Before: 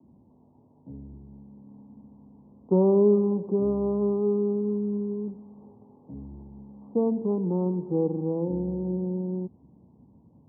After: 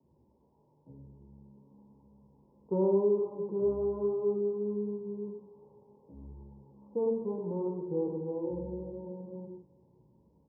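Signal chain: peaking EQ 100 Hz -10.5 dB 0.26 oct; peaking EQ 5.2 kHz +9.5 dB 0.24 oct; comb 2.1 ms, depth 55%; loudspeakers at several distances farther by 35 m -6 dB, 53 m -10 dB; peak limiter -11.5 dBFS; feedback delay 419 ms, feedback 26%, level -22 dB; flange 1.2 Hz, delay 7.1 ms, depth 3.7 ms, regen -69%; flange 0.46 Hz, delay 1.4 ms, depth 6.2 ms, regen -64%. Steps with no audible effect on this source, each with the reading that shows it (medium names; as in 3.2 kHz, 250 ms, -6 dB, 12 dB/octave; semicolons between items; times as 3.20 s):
peaking EQ 5.2 kHz: input has nothing above 850 Hz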